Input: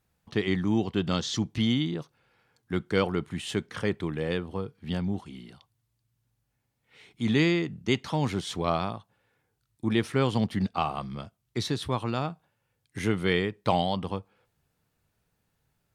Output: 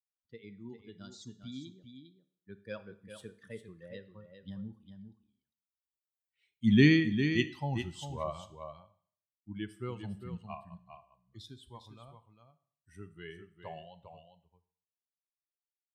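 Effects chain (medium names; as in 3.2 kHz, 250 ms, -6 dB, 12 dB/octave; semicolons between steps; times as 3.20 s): expander on every frequency bin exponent 2; Doppler pass-by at 6.43 s, 30 m/s, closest 12 m; on a send: delay 402 ms -8.5 dB; on the sum: Schroeder reverb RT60 0.55 s, combs from 27 ms, DRR 13.5 dB; trim +7 dB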